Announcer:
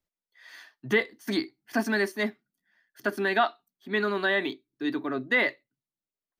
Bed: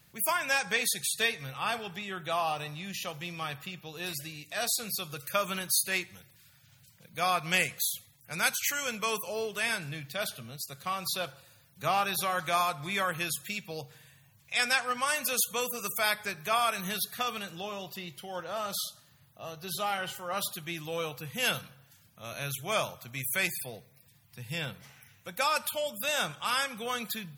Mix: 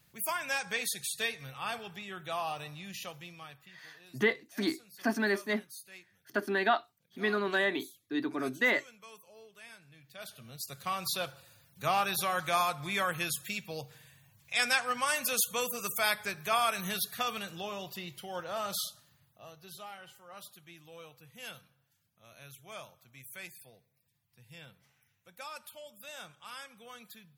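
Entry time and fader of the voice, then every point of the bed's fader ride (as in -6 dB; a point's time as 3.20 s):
3.30 s, -3.5 dB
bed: 3.05 s -5 dB
3.92 s -21 dB
9.88 s -21 dB
10.66 s -1 dB
18.85 s -1 dB
19.99 s -16 dB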